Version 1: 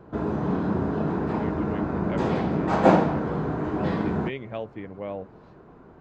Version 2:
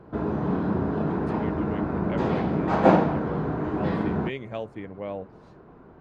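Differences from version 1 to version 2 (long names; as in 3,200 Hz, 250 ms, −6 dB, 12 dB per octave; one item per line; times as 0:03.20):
speech: remove low-pass filter 4,100 Hz 12 dB per octave
background: add high-frequency loss of the air 85 metres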